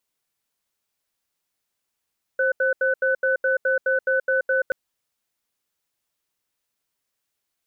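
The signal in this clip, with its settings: cadence 527 Hz, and 1.5 kHz, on 0.13 s, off 0.08 s, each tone -20.5 dBFS 2.33 s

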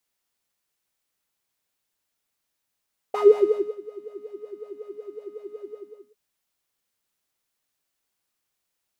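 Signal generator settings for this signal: synth patch with filter wobble G#4, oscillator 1 square, interval +19 st, sub -27 dB, noise -2 dB, filter bandpass, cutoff 350 Hz, Q 8.6, filter envelope 1 oct, filter decay 0.40 s, filter sustain 25%, attack 6.8 ms, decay 0.61 s, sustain -23.5 dB, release 0.47 s, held 2.54 s, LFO 5.4 Hz, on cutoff 0.6 oct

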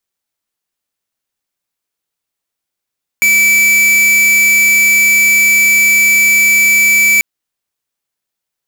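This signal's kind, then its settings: tone square 2.31 kHz -9 dBFS 3.99 s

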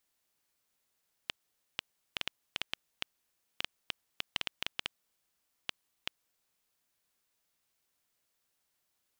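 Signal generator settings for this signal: random clicks 4.2 per s -14 dBFS 5.58 s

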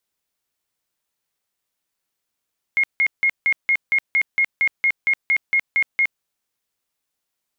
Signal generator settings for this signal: tone bursts 2.15 kHz, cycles 141, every 0.23 s, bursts 15, -14 dBFS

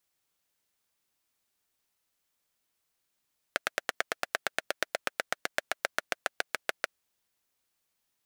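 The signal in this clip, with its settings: single-cylinder engine model, changing speed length 3.30 s, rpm 1100, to 800, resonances 640/1500 Hz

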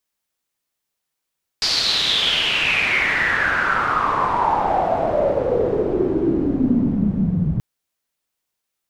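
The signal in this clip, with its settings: swept filtered noise white, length 5.98 s lowpass, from 4.8 kHz, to 150 Hz, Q 6.8, exponential, gain ramp +15 dB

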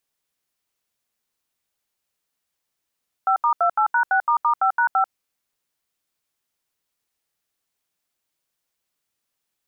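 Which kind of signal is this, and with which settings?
DTMF "5*28#6**5#5", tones 91 ms, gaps 77 ms, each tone -18 dBFS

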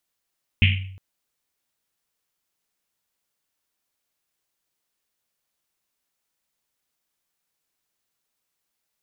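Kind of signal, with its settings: Risset drum length 0.36 s, pitch 95 Hz, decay 0.78 s, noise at 2.6 kHz, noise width 980 Hz, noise 40%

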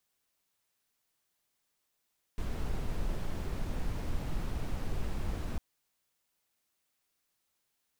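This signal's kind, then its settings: noise brown, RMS -32.5 dBFS 3.20 s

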